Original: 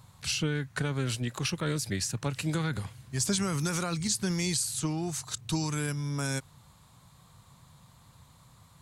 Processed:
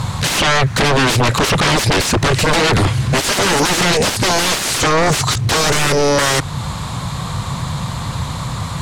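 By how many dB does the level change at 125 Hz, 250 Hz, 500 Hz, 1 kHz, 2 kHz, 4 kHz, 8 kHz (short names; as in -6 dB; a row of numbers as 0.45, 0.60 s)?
+14.5, +12.5, +21.0, +24.0, +21.5, +19.5, +13.5 dB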